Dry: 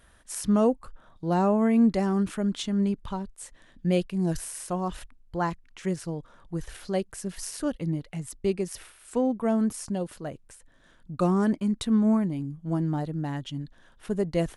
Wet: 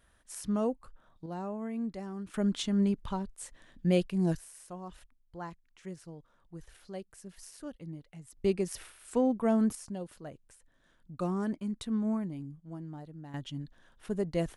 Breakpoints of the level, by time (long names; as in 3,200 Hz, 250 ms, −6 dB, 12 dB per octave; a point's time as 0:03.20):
−8.5 dB
from 0:01.26 −15 dB
from 0:02.34 −2 dB
from 0:04.35 −14 dB
from 0:08.37 −2 dB
from 0:09.75 −9 dB
from 0:12.60 −15.5 dB
from 0:13.34 −5 dB